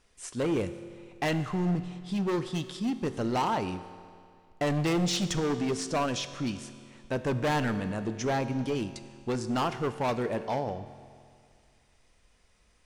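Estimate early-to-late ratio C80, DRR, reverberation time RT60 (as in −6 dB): 12.5 dB, 10.5 dB, 2.2 s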